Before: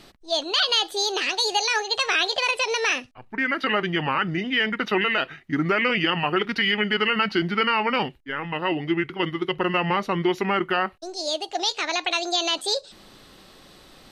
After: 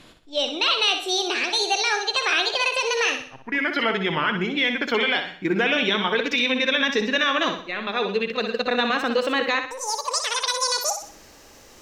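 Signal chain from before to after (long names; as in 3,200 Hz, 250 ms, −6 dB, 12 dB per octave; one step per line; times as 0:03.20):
gliding playback speed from 86% → 153%
flutter between parallel walls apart 10.7 metres, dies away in 0.49 s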